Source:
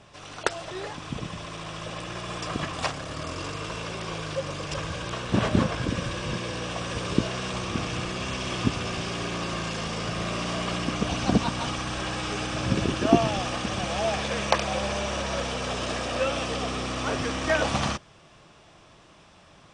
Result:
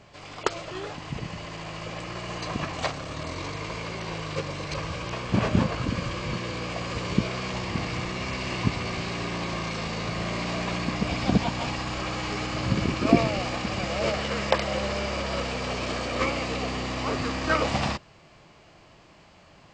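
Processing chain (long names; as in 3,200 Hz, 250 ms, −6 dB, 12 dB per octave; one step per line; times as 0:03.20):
formants moved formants −3 semitones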